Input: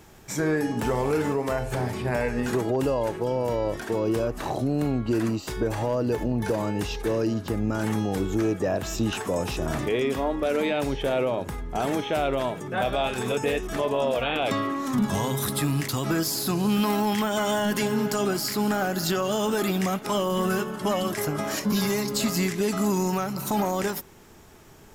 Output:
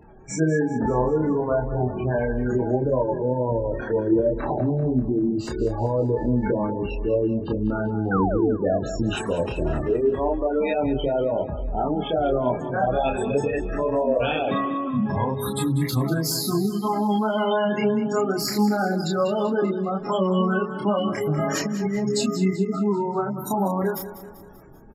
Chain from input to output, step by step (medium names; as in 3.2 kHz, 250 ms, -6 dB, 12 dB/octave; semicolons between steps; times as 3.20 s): spectral gate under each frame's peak -15 dB strong; chorus voices 4, 0.29 Hz, delay 28 ms, depth 4.1 ms; 8.11–8.55 s: painted sound fall 200–1600 Hz -32 dBFS; 21.38–22.11 s: compressor with a negative ratio -30 dBFS; on a send: feedback delay 194 ms, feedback 51%, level -13.5 dB; on the sum: trim +6 dB